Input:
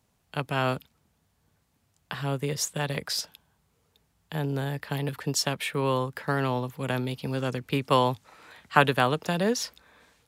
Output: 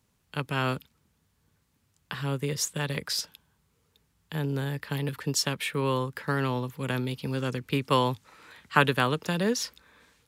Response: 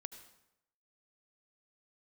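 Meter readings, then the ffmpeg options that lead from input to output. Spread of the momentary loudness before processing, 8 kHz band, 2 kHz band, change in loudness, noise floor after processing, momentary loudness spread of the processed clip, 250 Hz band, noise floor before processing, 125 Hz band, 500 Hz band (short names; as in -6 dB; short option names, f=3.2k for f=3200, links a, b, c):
11 LU, 0.0 dB, -0.5 dB, -1.0 dB, -72 dBFS, 11 LU, 0.0 dB, -71 dBFS, 0.0 dB, -2.0 dB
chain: -af "equalizer=f=700:t=o:w=0.52:g=-8"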